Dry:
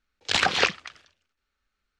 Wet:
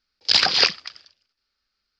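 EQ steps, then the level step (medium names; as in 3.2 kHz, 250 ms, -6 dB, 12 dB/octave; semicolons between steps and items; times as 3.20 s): resonant low-pass 4.9 kHz, resonance Q 10; bass shelf 82 Hz -6 dB; -1.5 dB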